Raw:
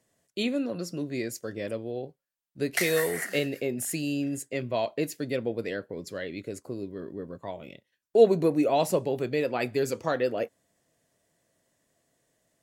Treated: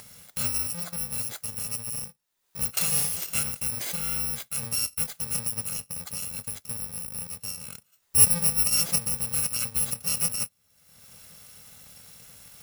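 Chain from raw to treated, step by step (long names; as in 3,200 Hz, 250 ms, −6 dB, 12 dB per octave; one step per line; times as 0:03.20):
samples in bit-reversed order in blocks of 128 samples
upward compression, threshold −29 dBFS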